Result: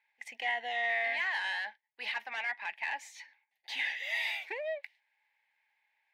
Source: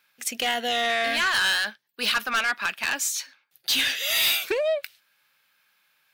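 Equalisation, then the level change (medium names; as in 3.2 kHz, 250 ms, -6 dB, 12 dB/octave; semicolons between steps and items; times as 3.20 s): two resonant band-passes 1.3 kHz, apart 1.2 oct; 0.0 dB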